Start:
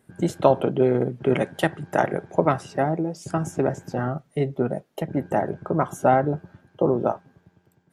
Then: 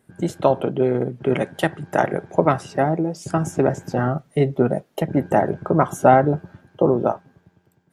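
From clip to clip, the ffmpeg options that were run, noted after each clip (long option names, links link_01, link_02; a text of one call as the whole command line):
ffmpeg -i in.wav -af "dynaudnorm=framelen=360:gausssize=9:maxgain=11.5dB" out.wav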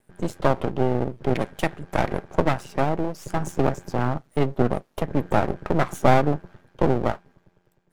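ffmpeg -i in.wav -af "aeval=exprs='max(val(0),0)':channel_layout=same" out.wav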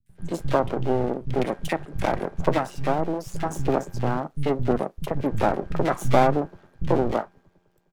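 ffmpeg -i in.wav -filter_complex "[0:a]acrossover=split=170|1900[link_01][link_02][link_03];[link_03]adelay=60[link_04];[link_02]adelay=90[link_05];[link_01][link_05][link_04]amix=inputs=3:normalize=0" out.wav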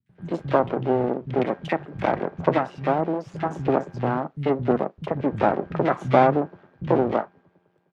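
ffmpeg -i in.wav -af "highpass=130,lowpass=2800,volume=2dB" out.wav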